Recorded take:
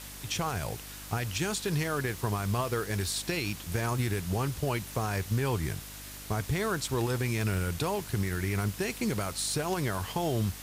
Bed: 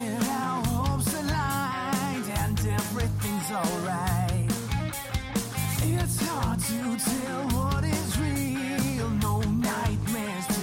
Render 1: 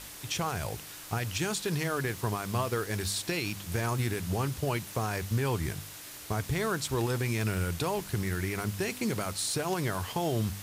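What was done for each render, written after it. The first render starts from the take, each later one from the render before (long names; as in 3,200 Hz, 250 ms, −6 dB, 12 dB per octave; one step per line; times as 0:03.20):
hum removal 50 Hz, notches 5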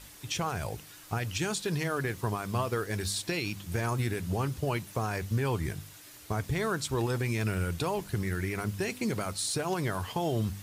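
broadband denoise 7 dB, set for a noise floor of −45 dBFS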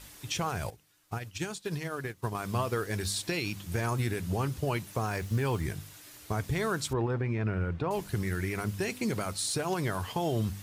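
0:00.70–0:02.35: expander for the loud parts 2.5 to 1, over −39 dBFS
0:05.06–0:05.63: hold until the input has moved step −52 dBFS
0:06.93–0:07.91: low-pass filter 1,700 Hz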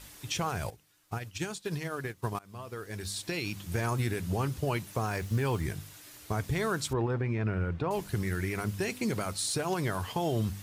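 0:02.39–0:03.64: fade in, from −23 dB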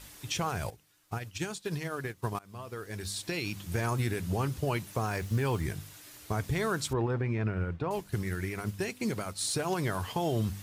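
0:07.48–0:09.41: expander for the loud parts, over −43 dBFS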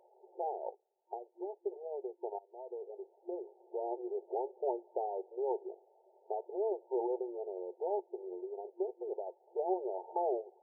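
brick-wall band-pass 350–920 Hz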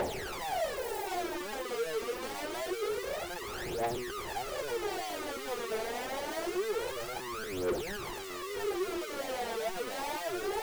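sign of each sample alone
phase shifter 0.26 Hz, delay 4.6 ms, feedback 74%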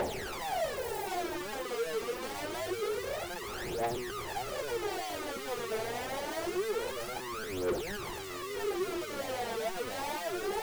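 mix in bed −27.5 dB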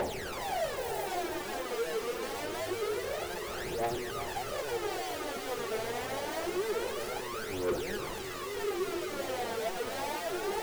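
echo with a time of its own for lows and highs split 520 Hz, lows 246 ms, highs 370 ms, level −8.5 dB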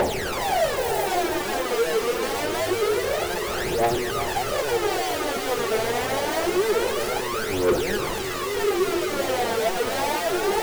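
level +11 dB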